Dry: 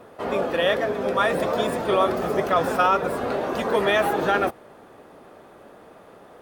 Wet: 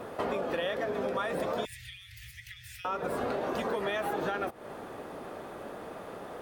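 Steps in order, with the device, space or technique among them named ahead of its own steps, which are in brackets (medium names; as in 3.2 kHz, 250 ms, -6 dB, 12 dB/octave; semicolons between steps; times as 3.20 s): serial compression, peaks first (compression, threshold -30 dBFS, peak gain reduction 14 dB; compression 2:1, threshold -37 dBFS, peak gain reduction 6 dB); 1.65–2.85 s: Chebyshev band-stop 120–1900 Hz, order 5; trim +5 dB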